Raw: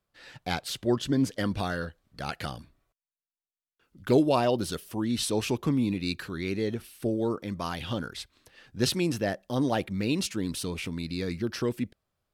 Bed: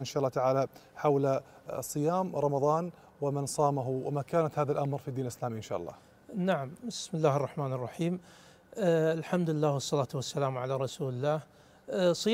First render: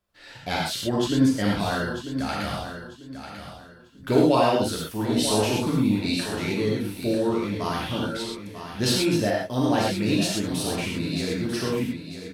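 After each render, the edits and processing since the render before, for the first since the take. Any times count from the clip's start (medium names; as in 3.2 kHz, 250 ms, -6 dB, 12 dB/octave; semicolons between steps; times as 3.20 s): feedback delay 944 ms, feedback 29%, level -10 dB; gated-style reverb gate 150 ms flat, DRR -4 dB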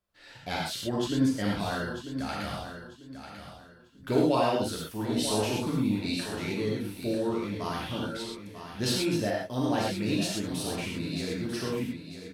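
trim -5.5 dB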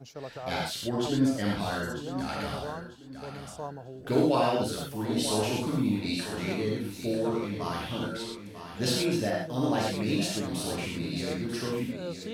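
add bed -11 dB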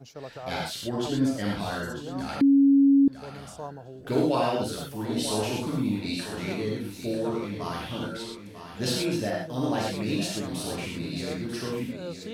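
2.41–3.08 s: bleep 277 Hz -14.5 dBFS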